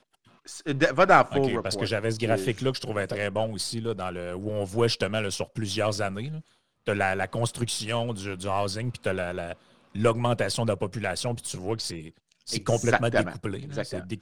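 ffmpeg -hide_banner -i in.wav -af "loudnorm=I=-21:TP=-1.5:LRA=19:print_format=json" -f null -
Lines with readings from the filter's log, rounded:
"input_i" : "-27.4",
"input_tp" : "-2.9",
"input_lra" : "4.5",
"input_thresh" : "-37.8",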